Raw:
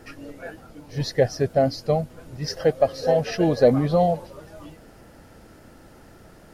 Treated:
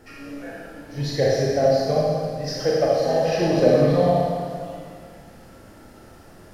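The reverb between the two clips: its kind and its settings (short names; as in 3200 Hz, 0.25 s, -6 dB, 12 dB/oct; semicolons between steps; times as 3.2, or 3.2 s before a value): Schroeder reverb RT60 2 s, combs from 28 ms, DRR -5.5 dB; gain -4 dB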